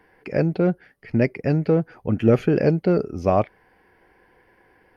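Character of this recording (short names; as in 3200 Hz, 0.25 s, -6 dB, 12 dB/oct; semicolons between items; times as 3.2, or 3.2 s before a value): noise floor -60 dBFS; spectral tilt -7.0 dB/oct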